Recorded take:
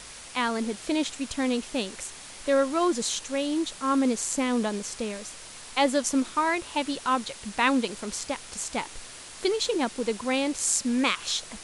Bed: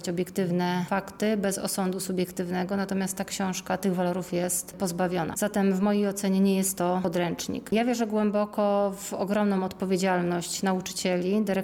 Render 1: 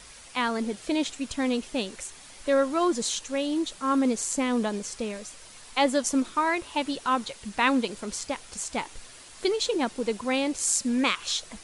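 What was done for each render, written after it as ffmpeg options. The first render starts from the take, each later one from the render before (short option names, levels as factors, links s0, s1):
-af "afftdn=nr=6:nf=-44"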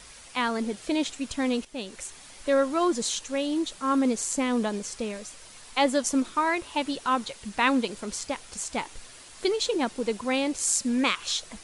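-filter_complex "[0:a]asplit=2[s0][s1];[s0]atrim=end=1.65,asetpts=PTS-STARTPTS,afade=t=out:st=1.646:d=0.004:c=hsin:silence=0.237137[s2];[s1]atrim=start=1.65,asetpts=PTS-STARTPTS,afade=t=in:d=0.4:silence=0.237137[s3];[s2][s3]concat=n=2:v=0:a=1"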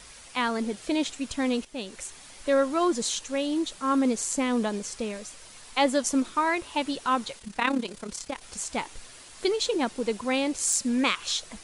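-filter_complex "[0:a]asplit=3[s0][s1][s2];[s0]afade=t=out:st=7.38:d=0.02[s3];[s1]tremolo=f=34:d=0.71,afade=t=in:st=7.38:d=0.02,afade=t=out:st=8.41:d=0.02[s4];[s2]afade=t=in:st=8.41:d=0.02[s5];[s3][s4][s5]amix=inputs=3:normalize=0,asettb=1/sr,asplit=3[s6][s7][s8];[s6]atrim=end=10.524[s9];[s7]atrim=start=10.52:end=10.92,asetpts=PTS-STARTPTS,afade=t=in:d=0.004:c=qsin,afade=t=out:st=0.396:d=0.004:c=qsin,asoftclip=type=hard:threshold=0.168[s10];[s8]atrim=start=10.916[s11];[s9][s10]acrossfade=d=0.004:c1=hsin:c2=qsin[s12];[s12][s11]acrossfade=d=0.004:c1=qsin:c2=hsin"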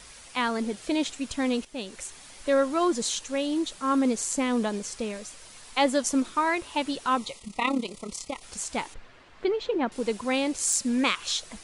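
-filter_complex "[0:a]asettb=1/sr,asplit=3[s0][s1][s2];[s0]atrim=end=7.174[s3];[s1]atrim=start=7.17:end=8.43,asetpts=PTS-STARTPTS,afade=t=in:d=0.004:c=qsin,afade=t=out:st=1.256:d=0.004:c=qsin,asuperstop=centerf=1600:order=20:qfactor=3[s4];[s2]atrim=start=8.426[s5];[s3][s4]acrossfade=d=0.004:c1=hsin:c2=qsin[s6];[s6][s5]acrossfade=d=0.004:c1=qsin:c2=hsin,asettb=1/sr,asplit=3[s7][s8][s9];[s7]atrim=end=8.944[s10];[s8]atrim=start=8.94:end=9.92,asetpts=PTS-STARTPTS,afade=t=in:d=0.004:c=qsin,afade=t=out:st=0.976:d=0.004:c=qsin,lowpass=2200[s11];[s9]atrim=start=9.916[s12];[s10][s11]acrossfade=d=0.004:c1=hsin:c2=qsin[s13];[s13][s12]acrossfade=d=0.004:c1=qsin:c2=hsin"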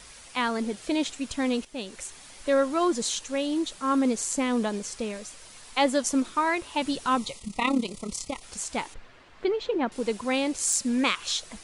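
-filter_complex "[0:a]asettb=1/sr,asplit=3[s0][s1][s2];[s0]atrim=end=6.824[s3];[s1]atrim=start=6.82:end=8.41,asetpts=PTS-STARTPTS,afade=t=in:d=0.004:c=qsin,afade=t=out:st=1.586:d=0.004:c=qsin,bass=f=250:g=6,treble=f=4000:g=3[s4];[s2]atrim=start=8.406[s5];[s3][s4]acrossfade=d=0.004:c1=hsin:c2=qsin[s6];[s6][s5]acrossfade=d=0.004:c1=qsin:c2=hsin"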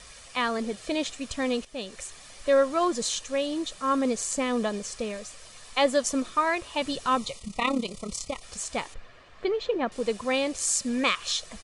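-af "lowpass=9700,aecho=1:1:1.7:0.36"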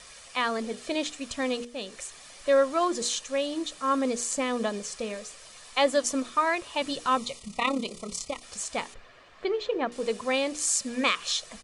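-af "lowshelf=f=120:g=-9,bandreject=f=60:t=h:w=6,bandreject=f=120:t=h:w=6,bandreject=f=180:t=h:w=6,bandreject=f=240:t=h:w=6,bandreject=f=300:t=h:w=6,bandreject=f=360:t=h:w=6,bandreject=f=420:t=h:w=6,bandreject=f=480:t=h:w=6"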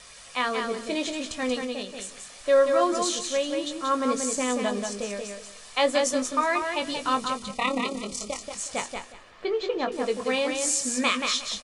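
-filter_complex "[0:a]asplit=2[s0][s1];[s1]adelay=20,volume=0.398[s2];[s0][s2]amix=inputs=2:normalize=0,aecho=1:1:182|364|546:0.562|0.112|0.0225"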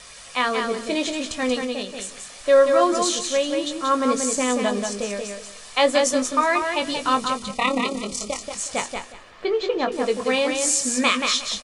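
-af "volume=1.68"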